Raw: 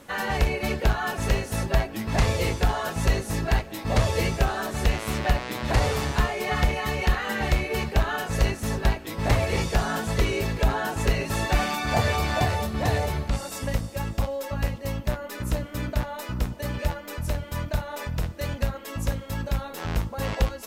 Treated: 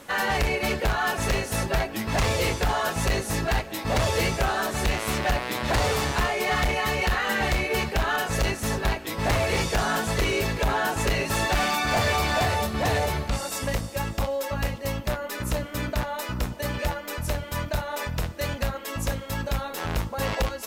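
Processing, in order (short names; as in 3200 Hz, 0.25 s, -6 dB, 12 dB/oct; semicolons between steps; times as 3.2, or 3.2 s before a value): low shelf 350 Hz -6 dB; overloaded stage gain 23.5 dB; gain +4.5 dB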